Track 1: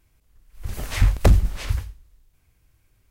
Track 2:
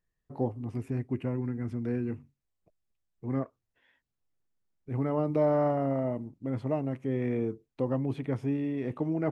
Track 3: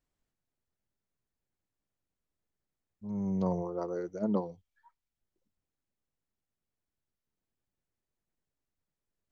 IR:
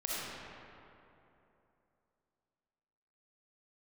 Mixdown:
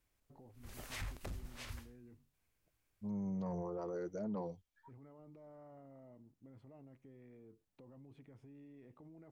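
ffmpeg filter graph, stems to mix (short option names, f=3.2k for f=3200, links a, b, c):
-filter_complex "[0:a]lowshelf=f=210:g=-11,alimiter=limit=-16.5dB:level=0:latency=1:release=302,volume=-14dB[a];[1:a]alimiter=level_in=3.5dB:limit=-24dB:level=0:latency=1:release=23,volume=-3.5dB,acompressor=threshold=-46dB:ratio=2,volume=-15dB[b];[2:a]bandreject=f=370:w=12,volume=-0.5dB[c];[a][b][c]amix=inputs=3:normalize=0,asoftclip=type=tanh:threshold=-21.5dB,alimiter=level_in=10.5dB:limit=-24dB:level=0:latency=1:release=14,volume=-10.5dB"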